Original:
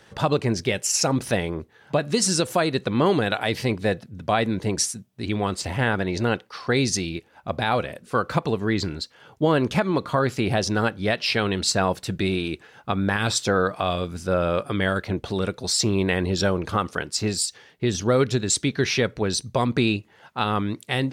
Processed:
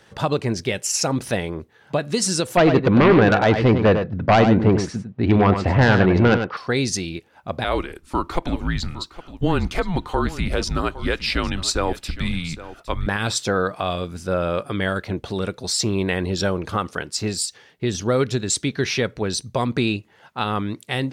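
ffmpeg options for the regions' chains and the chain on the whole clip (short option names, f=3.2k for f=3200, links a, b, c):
-filter_complex "[0:a]asettb=1/sr,asplit=3[a][b][c];[a]atrim=end=2.574[d];[b]atrim=start=2.57:end=6.57,asetpts=PTS-STARTPTS,afade=t=in:d=0.004:c=qsin,afade=t=out:st=3.996:d=0.004:c=qsin,lowpass=1.7k,aeval=exprs='0.335*sin(PI/2*2.24*val(0)/0.335)':c=same,aecho=1:1:100:0.398,atrim=end_sample=176400[e];[c]atrim=start=6.566[f];[d][e]acrossfade=d=0.004:c1=hsin:c2=qsin[g];[g][f]acrossfade=d=0.004:c1=qsin:c2=hsin,asettb=1/sr,asplit=3[h][i][j];[h]atrim=end=7.644[k];[i]atrim=start=7.64:end=13.07,asetpts=PTS-STARTPTS,afade=t=in:d=0.004:c=qsin,afade=t=out:st=5.426:d=0.004:c=qsin,afreqshift=-170,aecho=1:1:812:0.168,atrim=end_sample=239463[l];[j]atrim=start=13.066[m];[k][l]acrossfade=d=0.004:c1=hsin:c2=qsin[n];[n][m]acrossfade=d=0.004:c1=qsin:c2=hsin"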